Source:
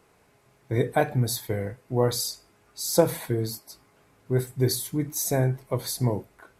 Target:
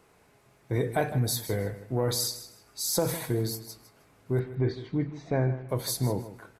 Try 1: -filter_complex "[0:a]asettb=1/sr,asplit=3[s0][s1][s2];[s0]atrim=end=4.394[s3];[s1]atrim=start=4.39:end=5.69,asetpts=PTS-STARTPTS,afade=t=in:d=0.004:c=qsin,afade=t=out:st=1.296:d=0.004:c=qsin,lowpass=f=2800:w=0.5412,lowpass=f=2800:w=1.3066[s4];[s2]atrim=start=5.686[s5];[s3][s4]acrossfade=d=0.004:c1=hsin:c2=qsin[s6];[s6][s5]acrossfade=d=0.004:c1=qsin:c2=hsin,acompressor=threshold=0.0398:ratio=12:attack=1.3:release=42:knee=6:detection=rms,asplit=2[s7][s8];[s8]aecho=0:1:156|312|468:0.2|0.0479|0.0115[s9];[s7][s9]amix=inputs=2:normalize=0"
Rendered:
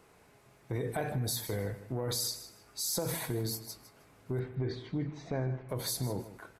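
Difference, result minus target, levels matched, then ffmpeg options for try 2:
compression: peak gain reduction +8.5 dB
-filter_complex "[0:a]asettb=1/sr,asplit=3[s0][s1][s2];[s0]atrim=end=4.394[s3];[s1]atrim=start=4.39:end=5.69,asetpts=PTS-STARTPTS,afade=t=in:d=0.004:c=qsin,afade=t=out:st=1.296:d=0.004:c=qsin,lowpass=f=2800:w=0.5412,lowpass=f=2800:w=1.3066[s4];[s2]atrim=start=5.686[s5];[s3][s4]acrossfade=d=0.004:c1=hsin:c2=qsin[s6];[s6][s5]acrossfade=d=0.004:c1=qsin:c2=hsin,acompressor=threshold=0.119:ratio=12:attack=1.3:release=42:knee=6:detection=rms,asplit=2[s7][s8];[s8]aecho=0:1:156|312|468:0.2|0.0479|0.0115[s9];[s7][s9]amix=inputs=2:normalize=0"

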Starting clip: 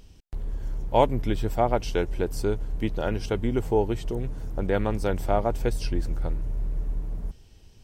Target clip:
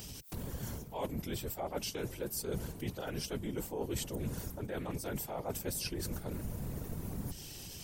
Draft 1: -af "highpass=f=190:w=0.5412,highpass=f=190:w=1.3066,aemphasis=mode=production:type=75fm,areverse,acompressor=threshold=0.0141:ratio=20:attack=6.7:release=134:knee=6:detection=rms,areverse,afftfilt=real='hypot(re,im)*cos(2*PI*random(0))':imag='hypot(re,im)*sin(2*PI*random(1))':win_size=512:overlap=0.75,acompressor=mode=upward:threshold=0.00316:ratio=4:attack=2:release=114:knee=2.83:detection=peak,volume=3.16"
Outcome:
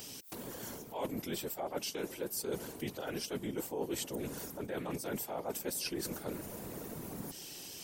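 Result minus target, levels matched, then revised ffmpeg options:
125 Hz band -7.0 dB
-af "highpass=f=64:w=0.5412,highpass=f=64:w=1.3066,aemphasis=mode=production:type=75fm,areverse,acompressor=threshold=0.0141:ratio=20:attack=6.7:release=134:knee=6:detection=rms,areverse,afftfilt=real='hypot(re,im)*cos(2*PI*random(0))':imag='hypot(re,im)*sin(2*PI*random(1))':win_size=512:overlap=0.75,acompressor=mode=upward:threshold=0.00316:ratio=4:attack=2:release=114:knee=2.83:detection=peak,volume=3.16"

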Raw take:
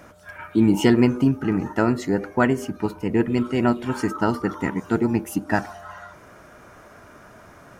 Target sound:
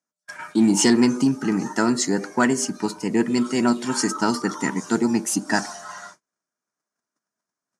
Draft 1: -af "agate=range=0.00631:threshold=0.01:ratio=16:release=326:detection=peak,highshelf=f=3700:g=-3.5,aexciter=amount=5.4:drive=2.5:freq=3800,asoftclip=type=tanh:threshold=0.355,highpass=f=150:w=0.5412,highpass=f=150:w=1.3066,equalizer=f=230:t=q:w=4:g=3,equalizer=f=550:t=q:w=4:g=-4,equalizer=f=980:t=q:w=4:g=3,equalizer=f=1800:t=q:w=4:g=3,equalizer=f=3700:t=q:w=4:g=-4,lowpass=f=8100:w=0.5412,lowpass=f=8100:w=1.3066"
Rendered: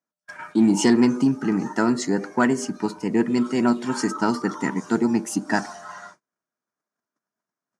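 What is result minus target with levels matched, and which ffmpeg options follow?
8 kHz band -6.5 dB
-af "agate=range=0.00631:threshold=0.01:ratio=16:release=326:detection=peak,highshelf=f=3700:g=7,aexciter=amount=5.4:drive=2.5:freq=3800,asoftclip=type=tanh:threshold=0.355,highpass=f=150:w=0.5412,highpass=f=150:w=1.3066,equalizer=f=230:t=q:w=4:g=3,equalizer=f=550:t=q:w=4:g=-4,equalizer=f=980:t=q:w=4:g=3,equalizer=f=1800:t=q:w=4:g=3,equalizer=f=3700:t=q:w=4:g=-4,lowpass=f=8100:w=0.5412,lowpass=f=8100:w=1.3066"

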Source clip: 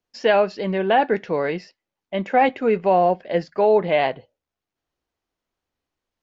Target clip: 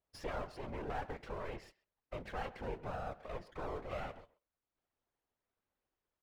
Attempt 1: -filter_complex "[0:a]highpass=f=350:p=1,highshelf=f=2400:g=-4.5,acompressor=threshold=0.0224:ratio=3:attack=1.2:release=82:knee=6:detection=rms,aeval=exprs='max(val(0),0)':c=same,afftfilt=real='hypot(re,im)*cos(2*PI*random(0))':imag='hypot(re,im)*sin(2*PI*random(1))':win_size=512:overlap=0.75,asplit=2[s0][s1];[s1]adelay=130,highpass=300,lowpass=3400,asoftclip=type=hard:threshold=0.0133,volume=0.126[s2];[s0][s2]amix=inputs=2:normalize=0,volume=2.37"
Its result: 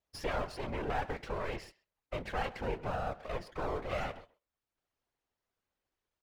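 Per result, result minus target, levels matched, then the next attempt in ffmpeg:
compression: peak gain reduction -5 dB; 4 kHz band +2.5 dB
-filter_complex "[0:a]highpass=f=350:p=1,highshelf=f=2400:g=-4.5,acompressor=threshold=0.00841:ratio=3:attack=1.2:release=82:knee=6:detection=rms,aeval=exprs='max(val(0),0)':c=same,afftfilt=real='hypot(re,im)*cos(2*PI*random(0))':imag='hypot(re,im)*sin(2*PI*random(1))':win_size=512:overlap=0.75,asplit=2[s0][s1];[s1]adelay=130,highpass=300,lowpass=3400,asoftclip=type=hard:threshold=0.0133,volume=0.126[s2];[s0][s2]amix=inputs=2:normalize=0,volume=2.37"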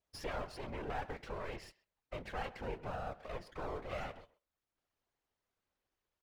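4 kHz band +3.0 dB
-filter_complex "[0:a]highpass=f=350:p=1,highshelf=f=2400:g=-13.5,acompressor=threshold=0.00841:ratio=3:attack=1.2:release=82:knee=6:detection=rms,aeval=exprs='max(val(0),0)':c=same,afftfilt=real='hypot(re,im)*cos(2*PI*random(0))':imag='hypot(re,im)*sin(2*PI*random(1))':win_size=512:overlap=0.75,asplit=2[s0][s1];[s1]adelay=130,highpass=300,lowpass=3400,asoftclip=type=hard:threshold=0.0133,volume=0.126[s2];[s0][s2]amix=inputs=2:normalize=0,volume=2.37"

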